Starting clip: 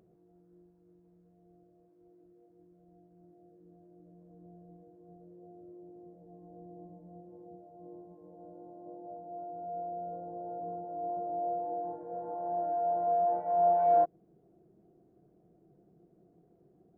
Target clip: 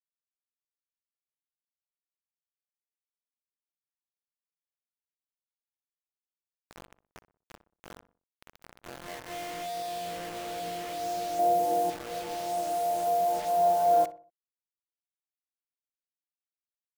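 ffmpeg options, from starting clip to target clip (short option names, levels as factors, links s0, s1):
-filter_complex "[0:a]asettb=1/sr,asplit=3[s0][s1][s2];[s0]atrim=end=11.394[s3];[s1]atrim=start=11.39:end=11.9,asetpts=PTS-STARTPTS,afade=t=in:d=0.004:c=qsin,afade=t=out:st=0.506:d=0.004:c=qsin,acontrast=79[s4];[s2]atrim=start=11.896[s5];[s3][s4]acrossfade=d=0.004:c1=hsin:c2=qsin[s6];[s6][s5]acrossfade=d=0.004:c1=qsin:c2=hsin,acrusher=bits=6:mix=0:aa=0.000001,asplit=2[s7][s8];[s8]adelay=61,lowpass=f=1500:p=1,volume=0.211,asplit=2[s9][s10];[s10]adelay=61,lowpass=f=1500:p=1,volume=0.41,asplit=2[s11][s12];[s12]adelay=61,lowpass=f=1500:p=1,volume=0.41,asplit=2[s13][s14];[s14]adelay=61,lowpass=f=1500:p=1,volume=0.41[s15];[s7][s9][s11][s13][s15]amix=inputs=5:normalize=0,volume=1.33"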